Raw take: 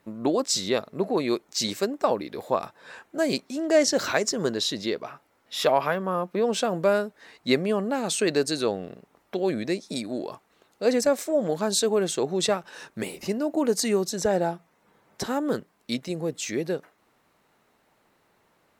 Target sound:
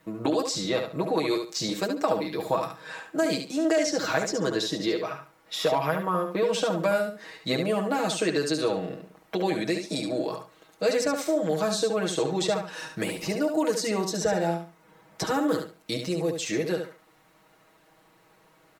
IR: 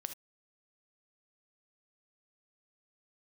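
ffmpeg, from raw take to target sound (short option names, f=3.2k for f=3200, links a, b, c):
-filter_complex "[0:a]aecho=1:1:6.3:0.96,acrossover=split=360|1200|6600[a][b][c][d];[a]acompressor=threshold=-34dB:ratio=4[e];[b]acompressor=threshold=-29dB:ratio=4[f];[c]acompressor=threshold=-35dB:ratio=4[g];[d]acompressor=threshold=-47dB:ratio=4[h];[e][f][g][h]amix=inputs=4:normalize=0,aecho=1:1:71|142|213:0.473|0.109|0.025,volume=2dB"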